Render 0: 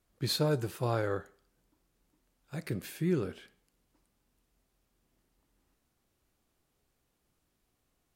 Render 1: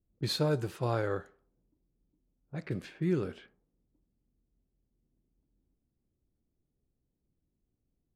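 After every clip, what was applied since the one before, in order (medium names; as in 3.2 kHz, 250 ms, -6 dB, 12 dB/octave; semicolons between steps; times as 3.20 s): level-controlled noise filter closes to 300 Hz, open at -31.5 dBFS; treble shelf 9.5 kHz -9.5 dB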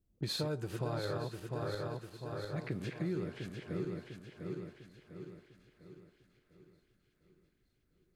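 backward echo that repeats 350 ms, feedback 67%, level -5 dB; compression 4:1, threshold -35 dBFS, peak gain reduction 10 dB; thinning echo 920 ms, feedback 59%, high-pass 910 Hz, level -17.5 dB; trim +1 dB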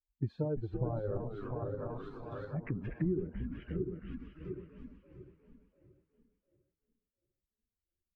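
expander on every frequency bin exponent 2; frequency-shifting echo 337 ms, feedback 53%, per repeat -120 Hz, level -8.5 dB; low-pass that closes with the level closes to 620 Hz, closed at -39 dBFS; trim +6.5 dB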